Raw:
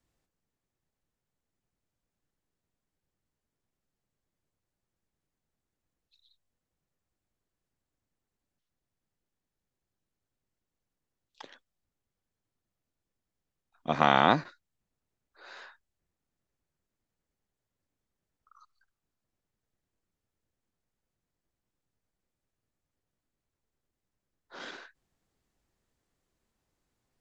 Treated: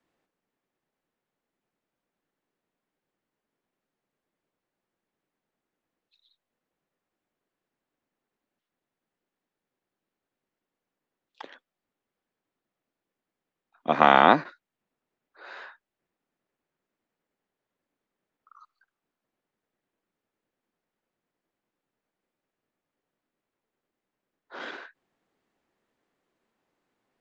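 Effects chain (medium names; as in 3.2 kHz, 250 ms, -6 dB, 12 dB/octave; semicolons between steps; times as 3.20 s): three-band isolator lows -20 dB, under 190 Hz, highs -13 dB, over 3.4 kHz; trim +6 dB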